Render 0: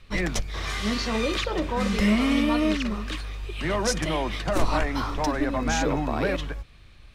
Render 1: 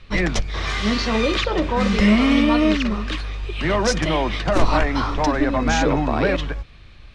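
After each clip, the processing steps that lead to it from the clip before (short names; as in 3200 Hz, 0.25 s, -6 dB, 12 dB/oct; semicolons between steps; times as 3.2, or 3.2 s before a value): LPF 5700 Hz 12 dB/oct; gain +6 dB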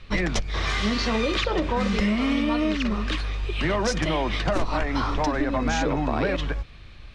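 compressor, threshold -20 dBFS, peak gain reduction 11.5 dB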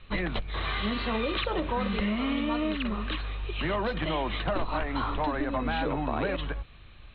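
rippled Chebyshev low-pass 4100 Hz, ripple 3 dB; gain -3 dB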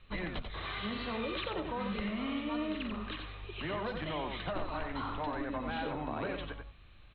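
echo 90 ms -6 dB; gain -8 dB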